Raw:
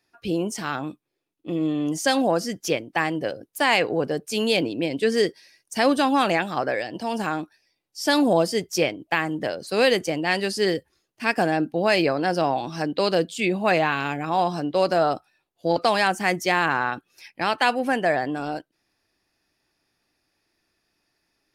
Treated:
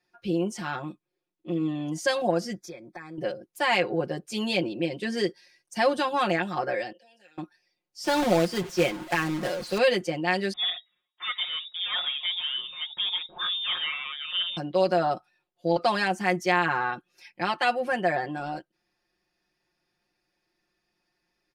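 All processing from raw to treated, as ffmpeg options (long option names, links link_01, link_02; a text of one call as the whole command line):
ffmpeg -i in.wav -filter_complex "[0:a]asettb=1/sr,asplit=3[link_01][link_02][link_03];[link_01]atrim=end=2.554[link_04];[link_02]atrim=start=2.55:end=3.18,asetpts=PTS-STARTPTS,afade=type=in:duration=0.004:curve=qsin,afade=type=out:start_time=0.626:duration=0.004:curve=qsin,acompressor=threshold=-36dB:ratio=4:attack=3.2:release=140:knee=1:detection=peak,asuperstop=centerf=2900:order=12:qfactor=4.2[link_05];[link_03]atrim=start=3.176[link_06];[link_04][link_05]acrossfade=duration=0.004:curve1=hsin:curve2=qsin[link_07];[link_07][link_06]acrossfade=duration=0.004:curve1=qsin:curve2=hsin,asettb=1/sr,asplit=3[link_08][link_09][link_10];[link_08]atrim=end=6.924[link_11];[link_09]atrim=start=6.92:end=7.38,asetpts=PTS-STARTPTS,afade=type=in:duration=0.004:curve=qsin,afade=type=out:start_time=0.456:duration=0.004:curve=qsin,acrossover=split=240|3000[link_12][link_13][link_14];[link_12]acompressor=threshold=-38dB:ratio=4[link_15];[link_13]acompressor=threshold=-41dB:ratio=4[link_16];[link_14]acompressor=threshold=-45dB:ratio=4[link_17];[link_15][link_16][link_17]amix=inputs=3:normalize=0,asplit=3[link_18][link_19][link_20];[link_18]bandpass=frequency=530:width_type=q:width=8,volume=0dB[link_21];[link_19]bandpass=frequency=1840:width_type=q:width=8,volume=-6dB[link_22];[link_20]bandpass=frequency=2480:width_type=q:width=8,volume=-9dB[link_23];[link_21][link_22][link_23]amix=inputs=3:normalize=0,aemphasis=mode=production:type=riaa[link_24];[link_10]atrim=start=7.376[link_25];[link_11][link_24]acrossfade=duration=0.004:curve1=hsin:curve2=qsin[link_26];[link_26][link_25]acrossfade=duration=0.004:curve1=qsin:curve2=hsin,asettb=1/sr,asplit=3[link_27][link_28][link_29];[link_27]atrim=end=8.044[link_30];[link_28]atrim=start=8.04:end=9.78,asetpts=PTS-STARTPTS,afade=type=in:duration=0.004:curve=qsin,afade=type=out:start_time=1.736:duration=0.004:curve=qsin,aeval=exprs='val(0)+0.5*0.0299*sgn(val(0))':channel_layout=same,acrossover=split=3700[link_31][link_32];[link_32]acompressor=threshold=-34dB:ratio=4:attack=1:release=60[link_33];[link_31][link_33]amix=inputs=2:normalize=0,acrusher=bits=2:mode=log:mix=0:aa=0.000001[link_34];[link_29]atrim=start=9.776[link_35];[link_30][link_34]acrossfade=duration=0.004:curve1=hsin:curve2=qsin[link_36];[link_36][link_35]acrossfade=duration=0.004:curve1=qsin:curve2=hsin,asettb=1/sr,asplit=3[link_37][link_38][link_39];[link_37]atrim=end=10.534[link_40];[link_38]atrim=start=10.53:end=14.57,asetpts=PTS-STARTPTS,afade=type=in:duration=0.004:curve=qsin,afade=type=out:start_time=4.036:duration=0.004:curve=qsin,aeval=exprs='(tanh(10*val(0)+0.15)-tanh(0.15))/10':channel_layout=same,lowpass=frequency=3200:width_type=q:width=0.5098,lowpass=frequency=3200:width_type=q:width=0.6013,lowpass=frequency=3200:width_type=q:width=0.9,lowpass=frequency=3200:width_type=q:width=2.563,afreqshift=-3800[link_41];[link_39]atrim=start=14.566[link_42];[link_40][link_41]acrossfade=duration=0.004:curve1=hsin:curve2=qsin[link_43];[link_43][link_42]acrossfade=duration=0.004:curve1=qsin:curve2=hsin,highshelf=frequency=8500:gain=-10.5,aecho=1:1:5.6:1,volume=-6.5dB" out.wav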